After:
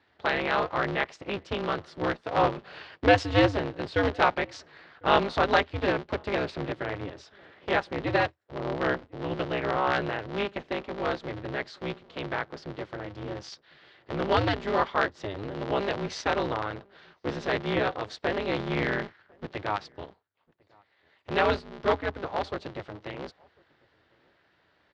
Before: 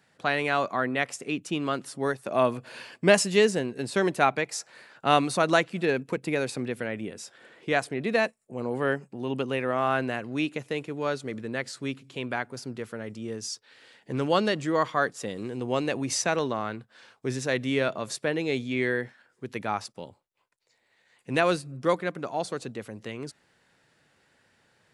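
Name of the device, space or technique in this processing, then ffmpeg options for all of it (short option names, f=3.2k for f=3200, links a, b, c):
ring modulator pedal into a guitar cabinet: -filter_complex "[0:a]asplit=3[a][b][c];[a]afade=t=out:st=18.58:d=0.02[d];[b]asubboost=boost=5:cutoff=160,afade=t=in:st=18.58:d=0.02,afade=t=out:st=19.45:d=0.02[e];[c]afade=t=in:st=19.45:d=0.02[f];[d][e][f]amix=inputs=3:normalize=0,aeval=exprs='val(0)*sgn(sin(2*PI*100*n/s))':c=same,highpass=79,equalizer=f=82:t=q:w=4:g=6,equalizer=f=220:t=q:w=4:g=-8,equalizer=f=2.5k:t=q:w=4:g=-4,lowpass=f=4.2k:w=0.5412,lowpass=f=4.2k:w=1.3066,asplit=2[g][h];[h]adelay=1050,volume=-29dB,highshelf=f=4k:g=-23.6[i];[g][i]amix=inputs=2:normalize=0"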